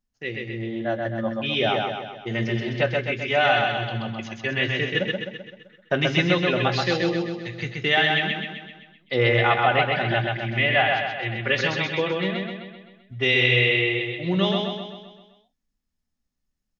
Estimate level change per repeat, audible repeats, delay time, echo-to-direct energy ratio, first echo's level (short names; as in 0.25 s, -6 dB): -5.5 dB, 6, 0.129 s, -1.5 dB, -3.0 dB